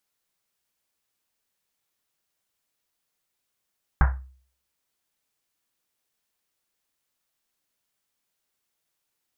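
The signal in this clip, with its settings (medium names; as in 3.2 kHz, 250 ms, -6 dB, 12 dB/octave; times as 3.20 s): Risset drum, pitch 65 Hz, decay 0.50 s, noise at 1.2 kHz, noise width 1.1 kHz, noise 20%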